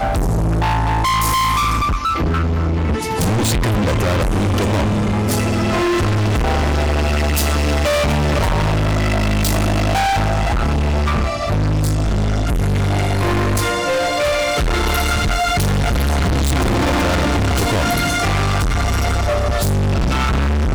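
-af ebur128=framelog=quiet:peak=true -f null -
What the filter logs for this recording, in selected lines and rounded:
Integrated loudness:
  I:         -17.4 LUFS
  Threshold: -27.4 LUFS
Loudness range:
  LRA:         1.0 LU
  Threshold: -37.4 LUFS
  LRA low:   -18.0 LUFS
  LRA high:  -17.0 LUFS
True peak:
  Peak:      -10.7 dBFS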